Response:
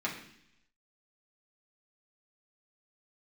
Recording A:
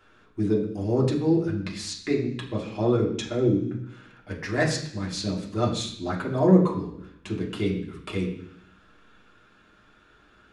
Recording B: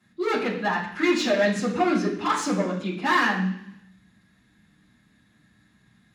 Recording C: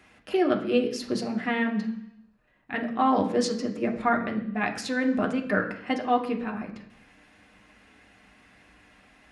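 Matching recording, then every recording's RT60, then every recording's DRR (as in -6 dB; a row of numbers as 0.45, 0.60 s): A; 0.70, 0.70, 0.70 s; -4.5, -10.5, 2.0 dB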